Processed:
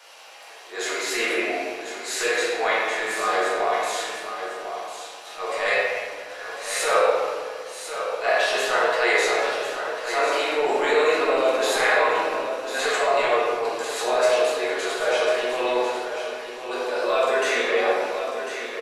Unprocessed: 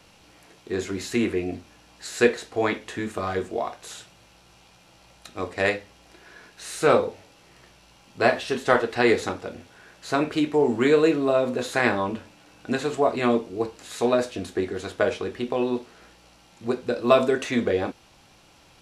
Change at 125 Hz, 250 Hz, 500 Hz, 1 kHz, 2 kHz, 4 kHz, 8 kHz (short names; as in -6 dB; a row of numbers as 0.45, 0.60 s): under -15 dB, -9.0 dB, +1.5 dB, +5.0 dB, +6.0 dB, +7.5 dB, +8.0 dB